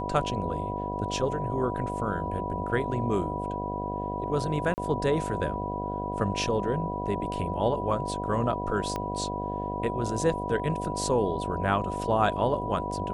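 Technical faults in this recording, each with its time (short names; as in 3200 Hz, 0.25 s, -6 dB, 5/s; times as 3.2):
buzz 50 Hz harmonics 15 -34 dBFS
tone 980 Hz -33 dBFS
4.74–4.78 gap 39 ms
8.96 pop -18 dBFS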